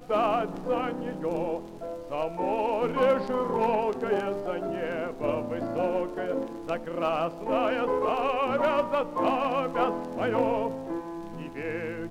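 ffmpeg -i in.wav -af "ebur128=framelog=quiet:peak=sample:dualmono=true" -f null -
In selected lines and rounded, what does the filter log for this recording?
Integrated loudness:
  I:         -25.4 LUFS
  Threshold: -35.5 LUFS
Loudness range:
  LRA:         3.2 LU
  Threshold: -45.2 LUFS
  LRA low:   -27.1 LUFS
  LRA high:  -23.8 LUFS
Sample peak:
  Peak:      -13.6 dBFS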